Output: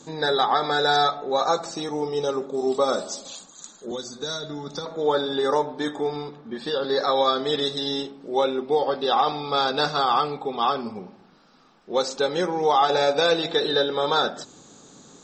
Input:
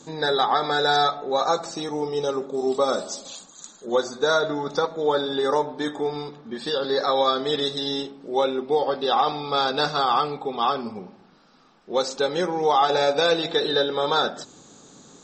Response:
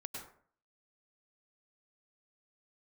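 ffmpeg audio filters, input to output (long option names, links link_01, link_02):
-filter_complex "[0:a]asettb=1/sr,asplit=3[link_01][link_02][link_03];[link_01]atrim=end=3.914[link_04];[link_02]atrim=start=3.91:end=4.86,asetpts=PTS-STARTPTS,afade=type=in:duration=0.004:curve=qsin,afade=type=out:start_time=0.946:duration=0.004:curve=qsin,acrossover=split=260|3000[link_05][link_06][link_07];[link_06]acompressor=threshold=-36dB:ratio=5[link_08];[link_05][link_08][link_07]amix=inputs=3:normalize=0[link_09];[link_03]atrim=start=4.856[link_10];[link_04][link_09]acrossfade=duration=0.004:curve1=hsin:curve2=qsin[link_11];[link_11][link_10]acrossfade=duration=0.004:curve1=qsin:curve2=hsin,asettb=1/sr,asplit=3[link_12][link_13][link_14];[link_12]atrim=end=6.164[link_15];[link_13]atrim=start=6.16:end=6.9,asetpts=PTS-STARTPTS,afade=type=in:duration=0.004:curve=qsin,afade=type=out:start_time=0.736:duration=0.004:curve=qsin,highshelf=frequency=5900:gain=-10[link_16];[link_14]atrim=start=6.896[link_17];[link_15][link_16]acrossfade=duration=0.004:curve1=hsin:curve2=qsin[link_18];[link_18][link_17]acrossfade=duration=0.004:curve1=qsin:curve2=hsin"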